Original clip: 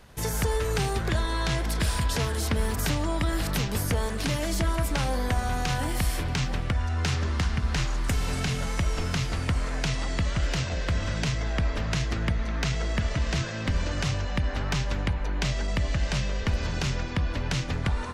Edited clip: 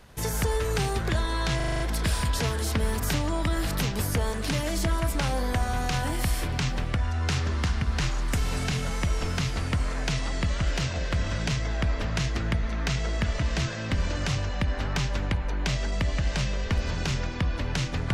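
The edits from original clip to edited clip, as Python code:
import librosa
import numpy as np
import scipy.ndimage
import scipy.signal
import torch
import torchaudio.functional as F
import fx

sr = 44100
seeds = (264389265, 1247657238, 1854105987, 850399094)

y = fx.edit(x, sr, fx.stutter(start_s=1.56, slice_s=0.04, count=7), tone=tone)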